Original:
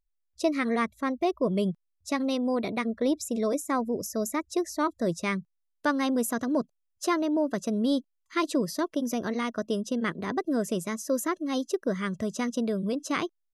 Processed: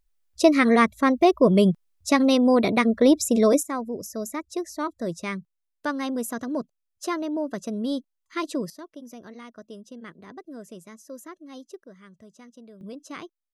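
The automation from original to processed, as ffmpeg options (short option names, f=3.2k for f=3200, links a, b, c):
-af "asetnsamples=n=441:p=0,asendcmd='3.63 volume volume -2dB;8.7 volume volume -13dB;11.84 volume volume -19dB;12.81 volume volume -9.5dB',volume=9dB"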